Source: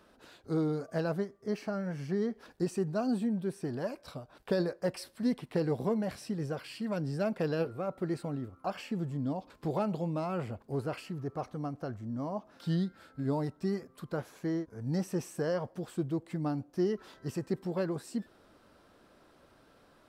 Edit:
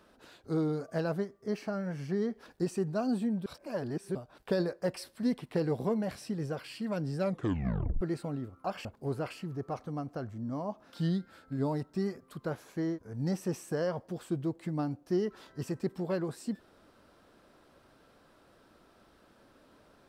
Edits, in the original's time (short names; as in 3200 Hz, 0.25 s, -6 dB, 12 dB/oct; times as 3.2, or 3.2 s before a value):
3.46–4.15 reverse
7.19 tape stop 0.82 s
8.85–10.52 cut